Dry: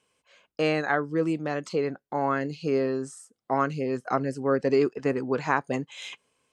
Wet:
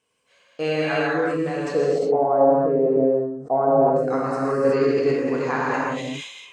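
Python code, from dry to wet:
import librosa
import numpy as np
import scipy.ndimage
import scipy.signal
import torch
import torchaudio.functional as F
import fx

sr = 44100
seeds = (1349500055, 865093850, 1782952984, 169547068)

y = fx.lowpass_res(x, sr, hz=650.0, q=4.0, at=(1.73, 3.96))
y = fx.rev_gated(y, sr, seeds[0], gate_ms=400, shape='flat', drr_db=-6.5)
y = fx.sustainer(y, sr, db_per_s=64.0)
y = y * 10.0 ** (-4.0 / 20.0)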